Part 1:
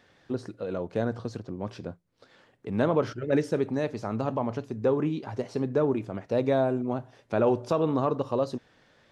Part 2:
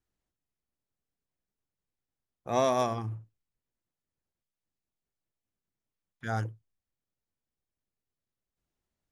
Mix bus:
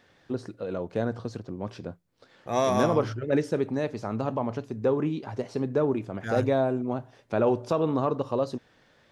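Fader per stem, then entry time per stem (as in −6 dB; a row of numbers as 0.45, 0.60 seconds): 0.0, +1.5 decibels; 0.00, 0.00 seconds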